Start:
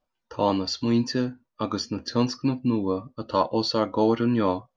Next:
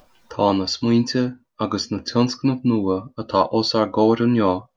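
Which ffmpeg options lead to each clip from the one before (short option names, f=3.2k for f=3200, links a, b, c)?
-af "acompressor=mode=upward:threshold=-43dB:ratio=2.5,volume=5dB"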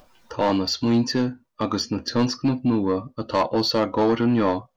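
-af "asoftclip=type=tanh:threshold=-13dB"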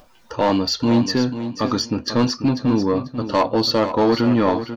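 -af "aecho=1:1:491|982|1473:0.299|0.0657|0.0144,volume=3dB"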